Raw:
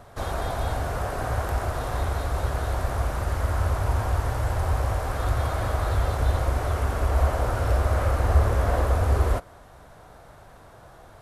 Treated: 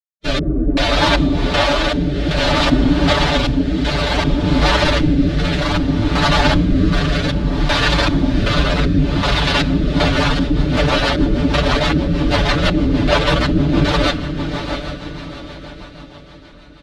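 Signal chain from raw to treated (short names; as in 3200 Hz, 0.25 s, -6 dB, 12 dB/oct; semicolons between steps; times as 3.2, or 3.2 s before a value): minimum comb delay 3.3 ms; fuzz box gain 47 dB, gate -38 dBFS; time stretch by phase-locked vocoder 1.5×; LFO low-pass square 1.3 Hz 290–3900 Hz; comb 6.9 ms, depth 78%; diffused feedback echo 0.707 s, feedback 44%, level -7.5 dB; rotary speaker horn 0.6 Hz, later 6.3 Hz, at 9.51; gain +1.5 dB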